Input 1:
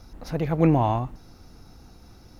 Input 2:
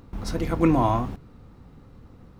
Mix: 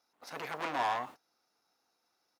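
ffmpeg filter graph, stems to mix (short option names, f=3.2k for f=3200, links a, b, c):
-filter_complex "[0:a]aeval=exprs='(tanh(25.1*val(0)+0.3)-tanh(0.3))/25.1':c=same,volume=2.5dB[a];[1:a]adelay=2.7,volume=-10dB[b];[a][b]amix=inputs=2:normalize=0,agate=range=-21dB:threshold=-35dB:ratio=16:detection=peak,highpass=690"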